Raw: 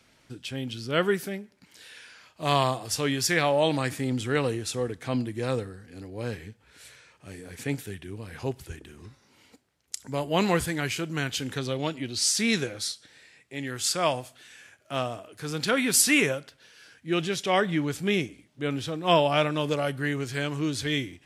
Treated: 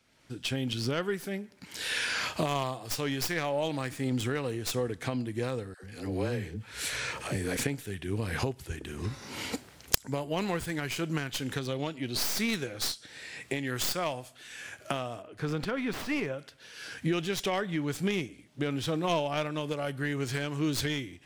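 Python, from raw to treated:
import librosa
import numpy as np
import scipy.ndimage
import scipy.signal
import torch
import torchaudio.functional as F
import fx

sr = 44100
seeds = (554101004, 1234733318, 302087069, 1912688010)

y = fx.tracing_dist(x, sr, depth_ms=0.21)
y = fx.recorder_agc(y, sr, target_db=-12.5, rise_db_per_s=29.0, max_gain_db=30)
y = fx.dispersion(y, sr, late='lows', ms=97.0, hz=520.0, at=(5.74, 7.57))
y = fx.lowpass(y, sr, hz=1700.0, slope=6, at=(15.22, 16.39))
y = y * librosa.db_to_amplitude(-8.5)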